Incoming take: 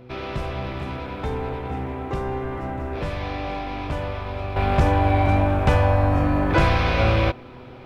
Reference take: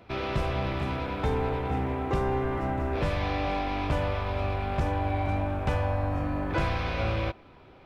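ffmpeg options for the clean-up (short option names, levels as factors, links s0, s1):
-af "bandreject=f=124.8:t=h:w=4,bandreject=f=249.6:t=h:w=4,bandreject=f=374.4:t=h:w=4,bandreject=f=499.2:t=h:w=4,asetnsamples=n=441:p=0,asendcmd='4.56 volume volume -9.5dB',volume=1"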